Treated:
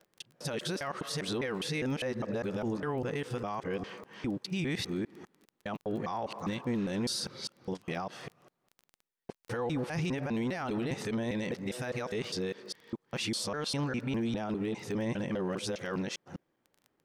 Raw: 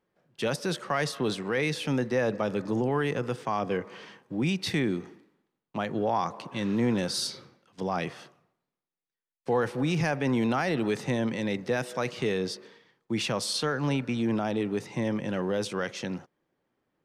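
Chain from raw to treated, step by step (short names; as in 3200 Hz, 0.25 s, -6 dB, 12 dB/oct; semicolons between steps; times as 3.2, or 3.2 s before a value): local time reversal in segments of 0.202 s; limiter -25.5 dBFS, peak gain reduction 10 dB; crackle 11/s -42 dBFS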